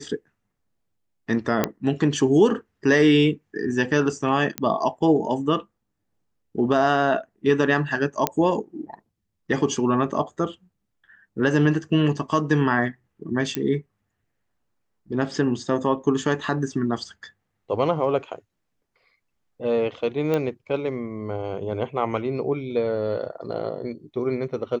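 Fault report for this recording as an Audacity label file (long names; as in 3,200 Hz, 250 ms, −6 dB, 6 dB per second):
1.640000	1.640000	click −6 dBFS
4.580000	4.580000	click −9 dBFS
8.270000	8.270000	click −4 dBFS
13.550000	13.550000	click −9 dBFS
20.340000	20.340000	click −12 dBFS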